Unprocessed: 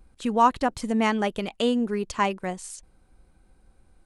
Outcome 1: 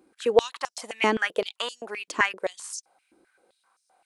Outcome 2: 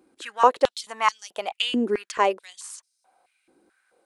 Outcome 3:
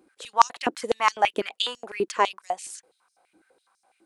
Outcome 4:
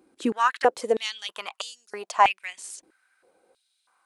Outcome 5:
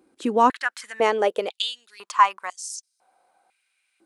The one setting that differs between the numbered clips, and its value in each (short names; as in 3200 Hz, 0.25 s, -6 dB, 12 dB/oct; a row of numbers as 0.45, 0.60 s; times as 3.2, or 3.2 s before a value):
stepped high-pass, rate: 7.7, 4.6, 12, 3.1, 2 Hz